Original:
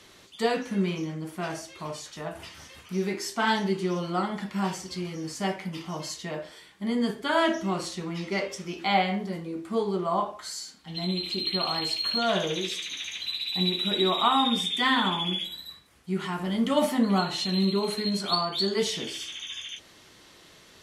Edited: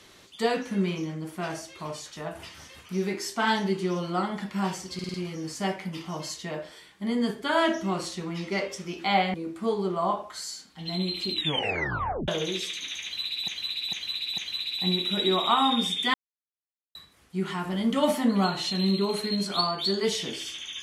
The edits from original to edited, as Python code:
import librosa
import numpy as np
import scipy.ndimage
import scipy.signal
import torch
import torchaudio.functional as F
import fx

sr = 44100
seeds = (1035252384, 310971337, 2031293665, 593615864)

y = fx.edit(x, sr, fx.stutter(start_s=4.94, slice_s=0.05, count=5),
    fx.cut(start_s=9.14, length_s=0.29),
    fx.tape_stop(start_s=11.41, length_s=0.96),
    fx.repeat(start_s=13.12, length_s=0.45, count=4),
    fx.silence(start_s=14.88, length_s=0.81), tone=tone)